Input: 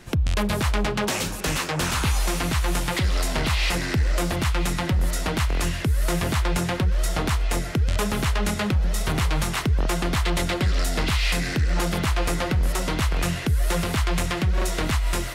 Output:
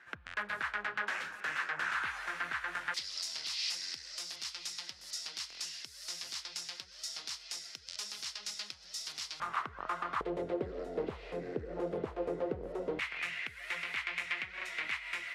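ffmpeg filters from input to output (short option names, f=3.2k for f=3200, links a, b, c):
-af "asetnsamples=n=441:p=0,asendcmd='2.94 bandpass f 5100;9.4 bandpass f 1200;10.21 bandpass f 450;12.99 bandpass f 2200',bandpass=f=1.6k:t=q:w=3.9:csg=0"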